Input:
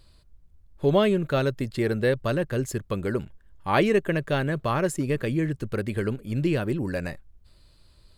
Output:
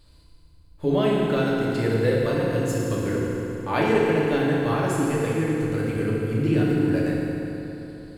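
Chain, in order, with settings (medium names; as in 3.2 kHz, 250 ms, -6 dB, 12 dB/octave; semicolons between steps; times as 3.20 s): in parallel at -1.5 dB: compression, threshold -31 dBFS, peak gain reduction 15 dB; on the sum: FDN reverb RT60 3.5 s, high-frequency decay 0.75×, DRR -5.5 dB; trim -7 dB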